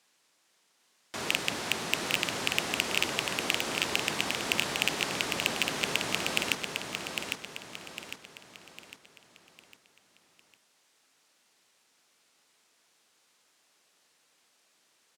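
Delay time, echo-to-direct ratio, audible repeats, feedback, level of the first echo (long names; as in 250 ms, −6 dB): 804 ms, −4.0 dB, 5, 43%, −5.0 dB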